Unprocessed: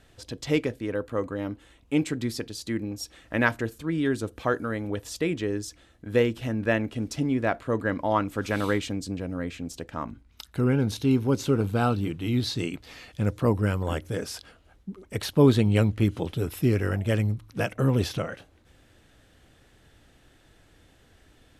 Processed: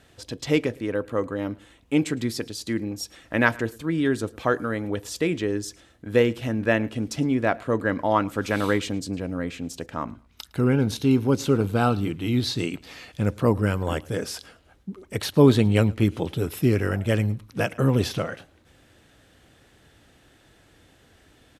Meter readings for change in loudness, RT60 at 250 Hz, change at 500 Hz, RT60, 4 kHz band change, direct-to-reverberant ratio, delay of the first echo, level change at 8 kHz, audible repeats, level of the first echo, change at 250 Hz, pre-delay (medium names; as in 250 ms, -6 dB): +2.5 dB, no reverb, +3.0 dB, no reverb, +3.0 dB, no reverb, 109 ms, +3.0 dB, 1, -24.0 dB, +2.5 dB, no reverb